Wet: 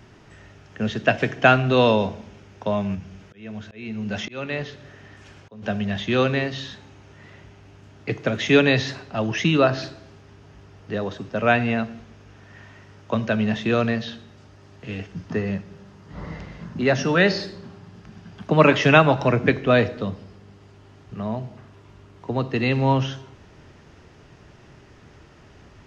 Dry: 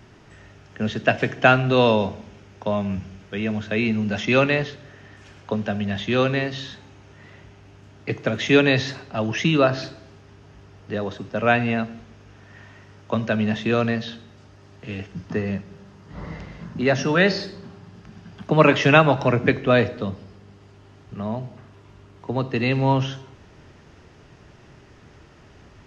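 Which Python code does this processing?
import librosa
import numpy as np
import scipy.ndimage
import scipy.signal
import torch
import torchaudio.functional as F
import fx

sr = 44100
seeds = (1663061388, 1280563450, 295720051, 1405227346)

y = fx.auto_swell(x, sr, attack_ms=572.0, at=(2.94, 5.62), fade=0.02)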